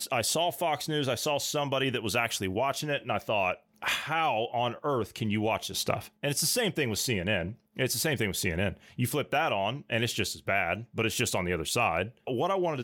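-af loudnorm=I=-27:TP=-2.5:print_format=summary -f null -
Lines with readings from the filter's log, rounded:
Input Integrated:    -29.2 LUFS
Input True Peak:     -12.9 dBTP
Input LRA:             0.7 LU
Input Threshold:     -39.2 LUFS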